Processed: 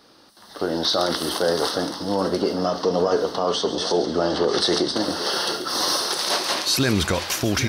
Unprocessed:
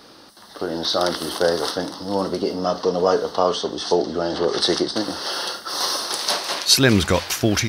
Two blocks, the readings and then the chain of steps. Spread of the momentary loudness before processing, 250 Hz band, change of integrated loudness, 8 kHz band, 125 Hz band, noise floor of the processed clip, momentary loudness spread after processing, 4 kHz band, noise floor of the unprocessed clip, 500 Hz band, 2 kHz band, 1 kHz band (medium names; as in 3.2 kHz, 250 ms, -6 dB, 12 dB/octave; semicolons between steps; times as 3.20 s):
9 LU, -1.0 dB, -1.0 dB, -1.5 dB, -2.5 dB, -50 dBFS, 4 LU, -0.5 dB, -46 dBFS, -1.0 dB, -1.5 dB, -1.0 dB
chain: peak limiter -12.5 dBFS, peak gain reduction 11 dB; two-band feedback delay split 2.5 kHz, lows 795 ms, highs 138 ms, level -12 dB; level rider gain up to 11.5 dB; trim -7.5 dB